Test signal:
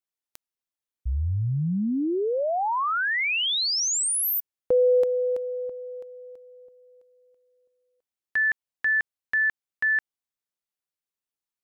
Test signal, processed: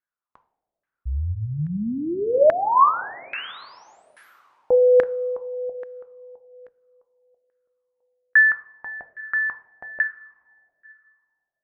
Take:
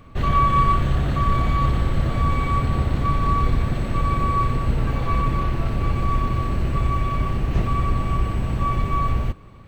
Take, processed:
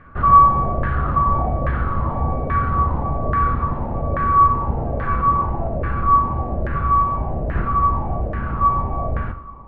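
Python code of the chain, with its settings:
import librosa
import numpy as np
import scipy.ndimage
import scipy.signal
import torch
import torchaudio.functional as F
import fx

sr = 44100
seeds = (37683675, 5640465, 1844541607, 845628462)

y = fx.rev_double_slope(x, sr, seeds[0], early_s=0.54, late_s=3.4, knee_db=-17, drr_db=6.5)
y = fx.filter_lfo_lowpass(y, sr, shape='saw_down', hz=1.2, low_hz=590.0, high_hz=1700.0, q=6.0)
y = y * 10.0 ** (-2.0 / 20.0)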